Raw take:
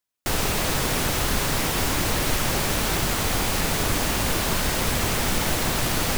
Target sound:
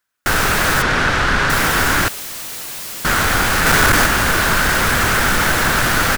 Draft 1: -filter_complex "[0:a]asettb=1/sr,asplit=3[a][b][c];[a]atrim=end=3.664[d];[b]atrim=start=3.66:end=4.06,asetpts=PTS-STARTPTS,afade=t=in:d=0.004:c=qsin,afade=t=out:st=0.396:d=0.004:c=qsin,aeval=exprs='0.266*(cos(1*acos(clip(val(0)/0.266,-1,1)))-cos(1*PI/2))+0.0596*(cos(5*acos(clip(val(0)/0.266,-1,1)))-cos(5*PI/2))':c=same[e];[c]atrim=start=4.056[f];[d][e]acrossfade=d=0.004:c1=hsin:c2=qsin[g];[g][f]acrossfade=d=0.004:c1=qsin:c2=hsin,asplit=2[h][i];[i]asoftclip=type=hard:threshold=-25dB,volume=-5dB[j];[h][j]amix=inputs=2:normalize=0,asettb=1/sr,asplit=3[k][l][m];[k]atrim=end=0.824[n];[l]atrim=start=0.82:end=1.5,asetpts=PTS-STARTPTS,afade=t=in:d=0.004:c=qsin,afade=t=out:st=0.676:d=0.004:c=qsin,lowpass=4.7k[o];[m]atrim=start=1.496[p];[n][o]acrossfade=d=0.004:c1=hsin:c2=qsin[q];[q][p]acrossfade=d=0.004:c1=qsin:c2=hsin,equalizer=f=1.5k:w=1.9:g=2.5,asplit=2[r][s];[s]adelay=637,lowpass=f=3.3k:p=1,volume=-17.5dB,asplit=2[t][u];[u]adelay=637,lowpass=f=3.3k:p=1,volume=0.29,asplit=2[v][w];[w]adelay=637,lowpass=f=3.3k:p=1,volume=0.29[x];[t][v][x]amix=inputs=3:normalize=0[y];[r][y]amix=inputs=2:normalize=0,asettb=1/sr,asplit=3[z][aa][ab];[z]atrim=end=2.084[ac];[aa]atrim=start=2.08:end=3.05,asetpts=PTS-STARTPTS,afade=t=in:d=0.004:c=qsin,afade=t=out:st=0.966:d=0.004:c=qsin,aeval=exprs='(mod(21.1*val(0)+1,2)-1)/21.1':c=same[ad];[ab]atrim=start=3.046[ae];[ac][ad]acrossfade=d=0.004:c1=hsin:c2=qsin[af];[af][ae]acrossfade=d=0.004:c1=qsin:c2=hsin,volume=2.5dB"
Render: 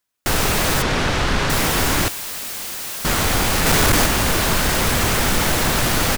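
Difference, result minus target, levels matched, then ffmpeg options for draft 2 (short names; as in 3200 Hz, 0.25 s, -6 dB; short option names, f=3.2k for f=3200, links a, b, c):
2000 Hz band -4.0 dB
-filter_complex "[0:a]asettb=1/sr,asplit=3[a][b][c];[a]atrim=end=3.664[d];[b]atrim=start=3.66:end=4.06,asetpts=PTS-STARTPTS,afade=t=in:d=0.004:c=qsin,afade=t=out:st=0.396:d=0.004:c=qsin,aeval=exprs='0.266*(cos(1*acos(clip(val(0)/0.266,-1,1)))-cos(1*PI/2))+0.0596*(cos(5*acos(clip(val(0)/0.266,-1,1)))-cos(5*PI/2))':c=same[e];[c]atrim=start=4.056[f];[d][e]acrossfade=d=0.004:c1=hsin:c2=qsin[g];[g][f]acrossfade=d=0.004:c1=qsin:c2=hsin,asplit=2[h][i];[i]asoftclip=type=hard:threshold=-25dB,volume=-5dB[j];[h][j]amix=inputs=2:normalize=0,asettb=1/sr,asplit=3[k][l][m];[k]atrim=end=0.824[n];[l]atrim=start=0.82:end=1.5,asetpts=PTS-STARTPTS,afade=t=in:d=0.004:c=qsin,afade=t=out:st=0.676:d=0.004:c=qsin,lowpass=4.7k[o];[m]atrim=start=1.496[p];[n][o]acrossfade=d=0.004:c1=hsin:c2=qsin[q];[q][p]acrossfade=d=0.004:c1=qsin:c2=hsin,equalizer=f=1.5k:w=1.9:g=13,asplit=2[r][s];[s]adelay=637,lowpass=f=3.3k:p=1,volume=-17.5dB,asplit=2[t][u];[u]adelay=637,lowpass=f=3.3k:p=1,volume=0.29,asplit=2[v][w];[w]adelay=637,lowpass=f=3.3k:p=1,volume=0.29[x];[t][v][x]amix=inputs=3:normalize=0[y];[r][y]amix=inputs=2:normalize=0,asettb=1/sr,asplit=3[z][aa][ab];[z]atrim=end=2.084[ac];[aa]atrim=start=2.08:end=3.05,asetpts=PTS-STARTPTS,afade=t=in:d=0.004:c=qsin,afade=t=out:st=0.966:d=0.004:c=qsin,aeval=exprs='(mod(21.1*val(0)+1,2)-1)/21.1':c=same[ad];[ab]atrim=start=3.046[ae];[ac][ad]acrossfade=d=0.004:c1=hsin:c2=qsin[af];[af][ae]acrossfade=d=0.004:c1=qsin:c2=hsin,volume=2.5dB"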